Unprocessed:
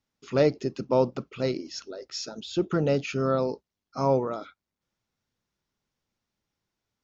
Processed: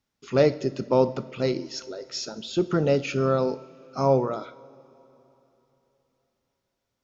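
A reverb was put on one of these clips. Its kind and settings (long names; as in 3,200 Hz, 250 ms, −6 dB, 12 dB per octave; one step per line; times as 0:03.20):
coupled-rooms reverb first 0.57 s, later 3.5 s, from −15 dB, DRR 12.5 dB
level +2 dB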